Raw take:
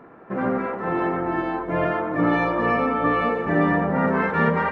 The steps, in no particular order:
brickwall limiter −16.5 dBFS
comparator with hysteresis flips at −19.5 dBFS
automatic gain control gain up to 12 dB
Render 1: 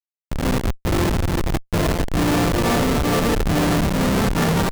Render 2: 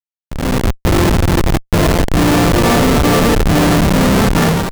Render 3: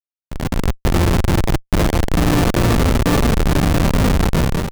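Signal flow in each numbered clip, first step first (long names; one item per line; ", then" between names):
comparator with hysteresis, then automatic gain control, then brickwall limiter
comparator with hysteresis, then brickwall limiter, then automatic gain control
brickwall limiter, then comparator with hysteresis, then automatic gain control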